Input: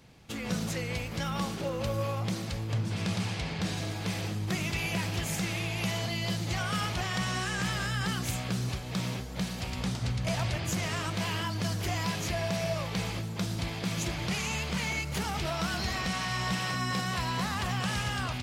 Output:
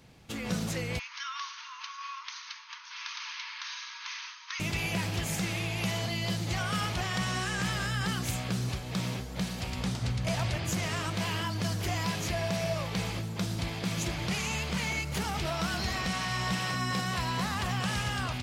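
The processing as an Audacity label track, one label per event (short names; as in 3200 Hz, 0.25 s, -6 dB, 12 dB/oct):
0.990000	4.600000	brick-wall FIR band-pass 890–6600 Hz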